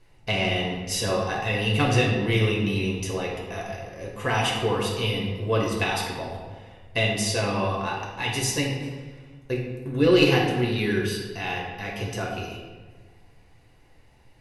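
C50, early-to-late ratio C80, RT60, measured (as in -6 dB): 2.0 dB, 4.5 dB, 1.5 s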